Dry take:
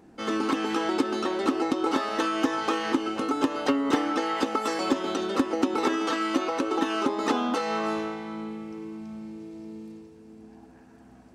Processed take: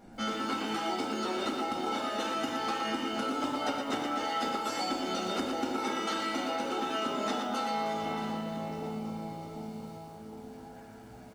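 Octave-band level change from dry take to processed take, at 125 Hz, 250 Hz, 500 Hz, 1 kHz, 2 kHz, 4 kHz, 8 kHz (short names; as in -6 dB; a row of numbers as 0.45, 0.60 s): +0.5, -8.0, -6.5, -3.0, -5.0, -1.0, -2.5 dB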